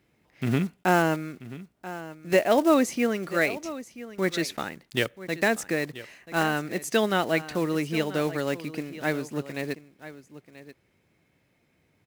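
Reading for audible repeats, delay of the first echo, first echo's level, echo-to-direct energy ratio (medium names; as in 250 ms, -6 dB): 1, 984 ms, -15.5 dB, -15.5 dB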